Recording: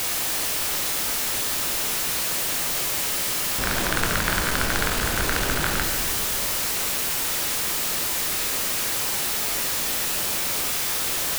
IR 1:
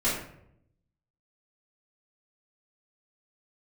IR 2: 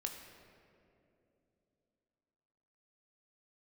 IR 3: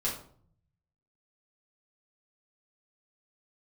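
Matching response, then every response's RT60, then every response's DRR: 2; 0.70, 2.9, 0.55 s; -12.0, 2.5, -6.5 dB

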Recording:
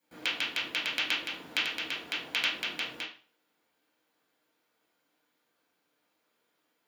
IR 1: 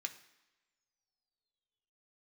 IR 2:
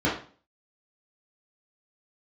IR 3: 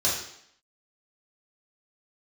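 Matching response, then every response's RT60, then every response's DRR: 2; not exponential, 0.40 s, 0.70 s; 5.5, -8.0, -7.0 dB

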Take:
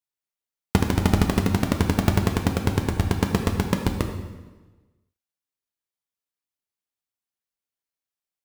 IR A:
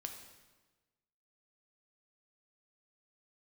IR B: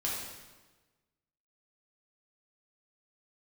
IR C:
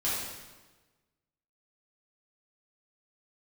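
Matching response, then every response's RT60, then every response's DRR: A; 1.3, 1.3, 1.3 s; 4.0, -5.5, -9.5 dB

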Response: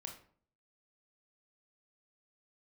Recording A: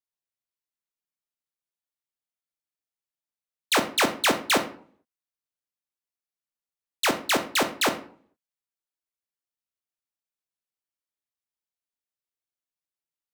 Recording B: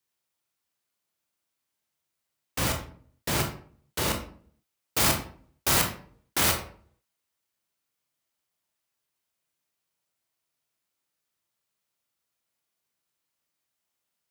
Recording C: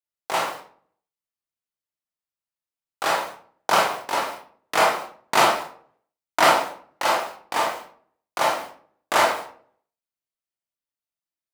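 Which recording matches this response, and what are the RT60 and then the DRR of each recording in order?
B; 0.50, 0.50, 0.50 s; 7.5, 2.0, -2.5 dB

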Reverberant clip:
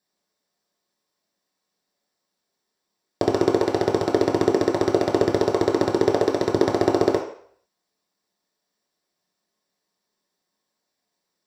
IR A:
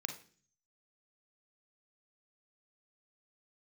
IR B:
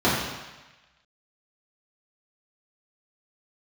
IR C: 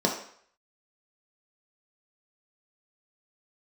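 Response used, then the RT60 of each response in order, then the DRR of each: C; 0.45, 1.1, 0.60 s; 5.0, -9.5, -1.0 dB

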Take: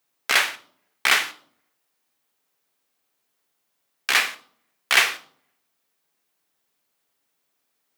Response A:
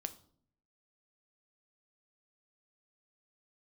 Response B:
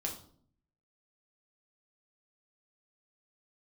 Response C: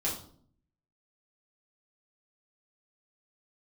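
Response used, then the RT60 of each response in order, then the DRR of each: A; 0.55, 0.55, 0.55 s; 9.0, -1.0, -6.5 dB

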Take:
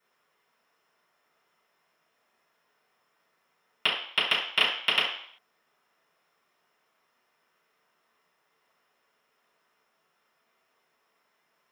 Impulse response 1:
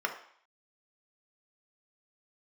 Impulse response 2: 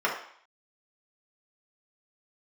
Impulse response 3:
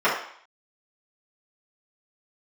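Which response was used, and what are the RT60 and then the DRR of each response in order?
3; 0.60, 0.60, 0.60 s; 3.0, -4.0, -10.5 dB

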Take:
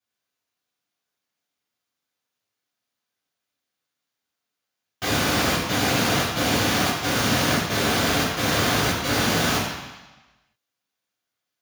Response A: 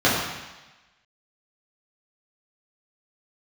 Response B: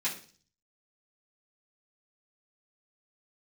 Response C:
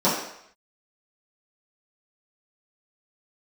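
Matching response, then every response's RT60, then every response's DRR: A; 1.1, 0.40, 0.70 s; -9.0, -10.0, -11.5 dB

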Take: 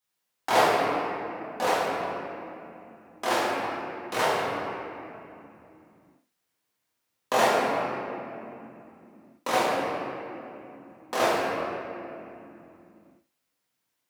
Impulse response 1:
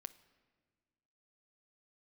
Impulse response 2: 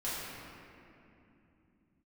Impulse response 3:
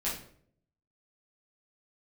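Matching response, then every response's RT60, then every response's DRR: 2; 1.6, 2.8, 0.60 s; 13.5, -10.5, -8.0 dB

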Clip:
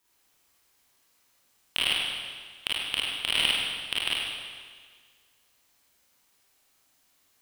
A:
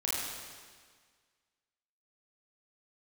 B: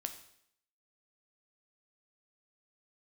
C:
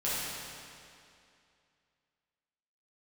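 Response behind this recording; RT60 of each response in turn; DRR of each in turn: A; 1.7, 0.70, 2.5 s; -7.5, 6.5, -10.5 dB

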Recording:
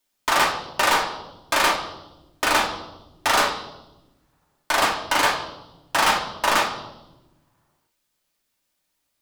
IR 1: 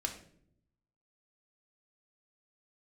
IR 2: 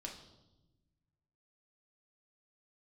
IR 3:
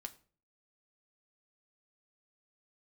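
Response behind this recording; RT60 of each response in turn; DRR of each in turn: 2; not exponential, 1.0 s, 0.45 s; 2.5, -0.5, 5.0 dB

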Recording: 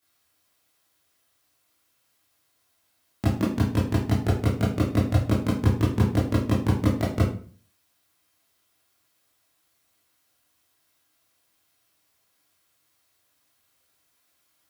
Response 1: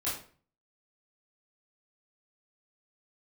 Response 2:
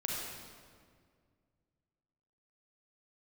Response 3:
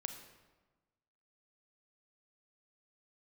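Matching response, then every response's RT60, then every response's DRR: 1; 0.45, 2.0, 1.3 s; -10.0, -3.5, 6.5 dB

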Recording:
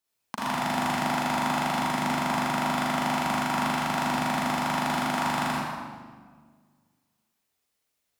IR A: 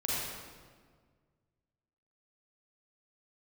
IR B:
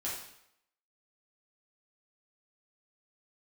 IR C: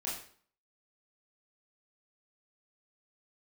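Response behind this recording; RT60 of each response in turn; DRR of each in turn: A; 1.7, 0.75, 0.50 s; -7.0, -7.0, -7.0 dB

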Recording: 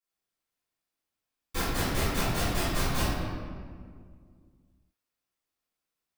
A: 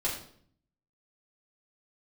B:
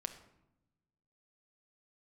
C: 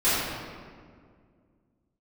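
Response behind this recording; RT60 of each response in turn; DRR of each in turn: C; 0.60, 0.90, 2.0 s; -6.0, 6.5, -15.5 dB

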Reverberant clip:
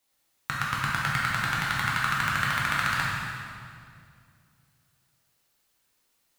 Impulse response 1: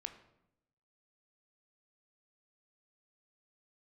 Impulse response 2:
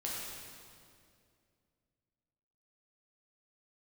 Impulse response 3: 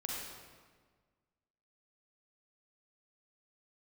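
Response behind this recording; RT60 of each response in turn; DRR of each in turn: 2; 0.85, 2.3, 1.5 s; 7.0, -5.5, -3.5 dB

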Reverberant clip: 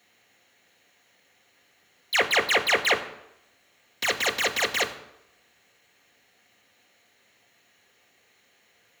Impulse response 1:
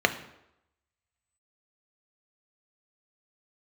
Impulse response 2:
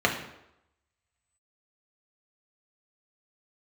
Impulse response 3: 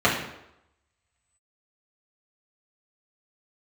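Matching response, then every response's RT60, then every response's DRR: 1; 0.85, 0.85, 0.85 s; 7.0, -0.5, -7.5 dB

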